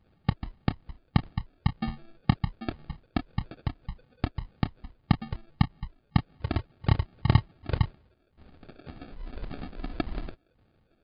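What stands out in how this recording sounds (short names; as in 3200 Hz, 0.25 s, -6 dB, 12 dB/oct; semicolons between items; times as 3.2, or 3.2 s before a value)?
phasing stages 8, 1.8 Hz, lowest notch 140–1100 Hz; aliases and images of a low sample rate 1000 Hz, jitter 0%; MP3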